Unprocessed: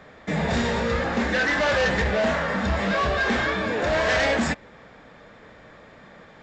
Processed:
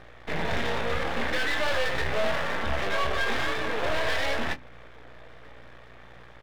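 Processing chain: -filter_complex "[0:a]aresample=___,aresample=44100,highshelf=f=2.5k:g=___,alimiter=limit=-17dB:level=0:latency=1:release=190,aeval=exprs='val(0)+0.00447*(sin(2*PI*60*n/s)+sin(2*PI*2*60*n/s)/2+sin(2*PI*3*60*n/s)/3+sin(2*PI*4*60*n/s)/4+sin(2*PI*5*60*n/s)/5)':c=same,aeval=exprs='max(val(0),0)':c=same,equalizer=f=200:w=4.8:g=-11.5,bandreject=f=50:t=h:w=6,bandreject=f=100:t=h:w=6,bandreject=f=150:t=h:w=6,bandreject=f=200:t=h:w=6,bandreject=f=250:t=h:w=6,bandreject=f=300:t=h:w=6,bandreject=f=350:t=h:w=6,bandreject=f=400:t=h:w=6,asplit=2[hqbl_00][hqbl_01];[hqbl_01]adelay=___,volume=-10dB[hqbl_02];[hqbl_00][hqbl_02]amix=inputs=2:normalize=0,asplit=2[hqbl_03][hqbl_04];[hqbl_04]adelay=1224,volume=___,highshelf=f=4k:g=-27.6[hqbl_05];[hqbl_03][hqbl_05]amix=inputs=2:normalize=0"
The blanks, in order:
8000, 3.5, 23, -28dB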